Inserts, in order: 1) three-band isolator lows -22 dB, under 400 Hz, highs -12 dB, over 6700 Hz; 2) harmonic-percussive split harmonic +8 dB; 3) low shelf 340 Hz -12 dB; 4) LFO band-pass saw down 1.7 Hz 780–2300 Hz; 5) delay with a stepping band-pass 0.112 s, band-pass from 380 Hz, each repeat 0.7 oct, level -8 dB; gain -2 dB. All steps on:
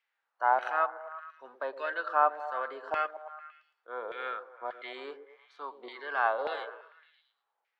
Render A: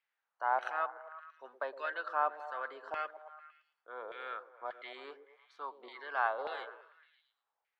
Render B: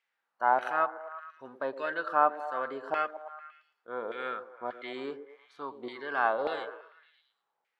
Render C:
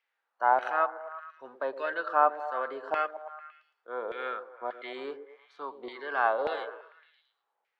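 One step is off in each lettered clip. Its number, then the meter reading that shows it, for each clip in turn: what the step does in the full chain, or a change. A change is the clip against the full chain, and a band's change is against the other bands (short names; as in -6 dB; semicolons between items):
2, 250 Hz band -2.0 dB; 1, 250 Hz band +9.5 dB; 3, 250 Hz band +5.0 dB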